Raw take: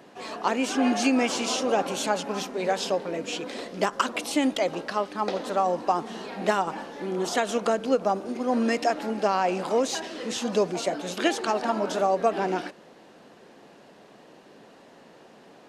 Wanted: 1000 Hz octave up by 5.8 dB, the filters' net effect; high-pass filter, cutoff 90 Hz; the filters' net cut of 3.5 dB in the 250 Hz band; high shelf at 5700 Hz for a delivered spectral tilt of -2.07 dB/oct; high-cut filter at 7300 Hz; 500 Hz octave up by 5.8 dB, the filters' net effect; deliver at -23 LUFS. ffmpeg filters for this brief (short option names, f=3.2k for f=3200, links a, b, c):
-af "highpass=90,lowpass=7.3k,equalizer=f=250:t=o:g=-6.5,equalizer=f=500:t=o:g=7,equalizer=f=1k:t=o:g=5.5,highshelf=f=5.7k:g=-5.5,volume=-0.5dB"